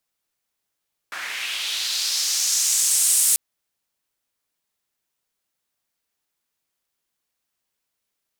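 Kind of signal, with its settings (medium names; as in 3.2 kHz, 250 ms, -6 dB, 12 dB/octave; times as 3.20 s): swept filtered noise white, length 2.24 s bandpass, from 1.4 kHz, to 9.2 kHz, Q 2.3, linear, gain ramp +9 dB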